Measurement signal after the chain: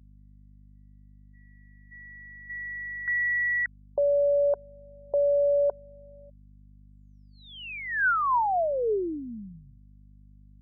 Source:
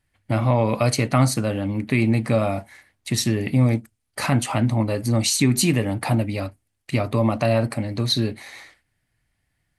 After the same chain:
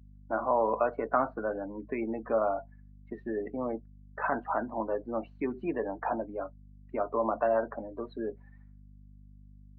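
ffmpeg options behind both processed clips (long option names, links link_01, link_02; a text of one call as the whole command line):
ffmpeg -i in.wav -af "highpass=frequency=260:width=0.5412,highpass=frequency=260:width=1.3066,equalizer=frequency=270:width_type=q:width=4:gain=-5,equalizer=frequency=430:width_type=q:width=4:gain=6,equalizer=frequency=690:width_type=q:width=4:gain=5,equalizer=frequency=980:width_type=q:width=4:gain=7,equalizer=frequency=1500:width_type=q:width=4:gain=9,equalizer=frequency=2100:width_type=q:width=4:gain=-6,lowpass=frequency=2200:width=0.5412,lowpass=frequency=2200:width=1.3066,afftdn=noise_reduction=27:noise_floor=-28,aeval=exprs='val(0)+0.00708*(sin(2*PI*50*n/s)+sin(2*PI*2*50*n/s)/2+sin(2*PI*3*50*n/s)/3+sin(2*PI*4*50*n/s)/4+sin(2*PI*5*50*n/s)/5)':channel_layout=same,volume=-8.5dB" out.wav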